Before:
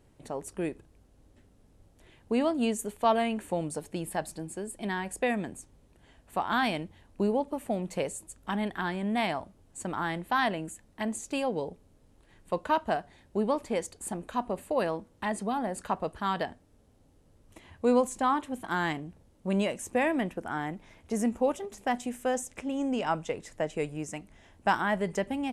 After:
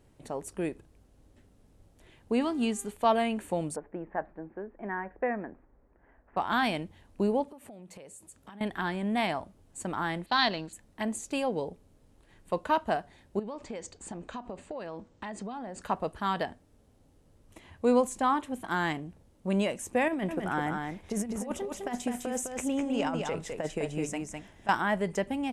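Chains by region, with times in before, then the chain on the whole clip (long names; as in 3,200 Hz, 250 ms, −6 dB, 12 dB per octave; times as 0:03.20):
0:02.40–0:02.90: low-pass filter 11,000 Hz + parametric band 580 Hz −12.5 dB 0.43 octaves + hum with harmonics 400 Hz, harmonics 34, −54 dBFS −7 dB per octave
0:03.76–0:06.37: Butterworth low-pass 1,900 Hz + parametric band 120 Hz −11.5 dB 1.6 octaves
0:07.44–0:08.61: high-pass filter 80 Hz + downward compressor 8 to 1, threshold −45 dBFS
0:10.26–0:10.73: mu-law and A-law mismatch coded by A + low-pass with resonance 4,300 Hz, resonance Q 7.7
0:13.39–0:15.82: Butterworth low-pass 7,700 Hz + downward compressor 12 to 1, threshold −34 dBFS
0:20.08–0:24.69: compressor whose output falls as the input rises −30 dBFS, ratio −0.5 + single-tap delay 206 ms −4.5 dB
whole clip: no processing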